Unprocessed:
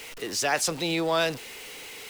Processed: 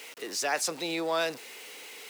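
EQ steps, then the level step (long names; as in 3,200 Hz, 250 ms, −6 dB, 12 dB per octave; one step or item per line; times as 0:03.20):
high-pass filter 270 Hz 12 dB per octave
dynamic equaliser 3,100 Hz, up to −5 dB, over −47 dBFS, Q 5.2
−3.5 dB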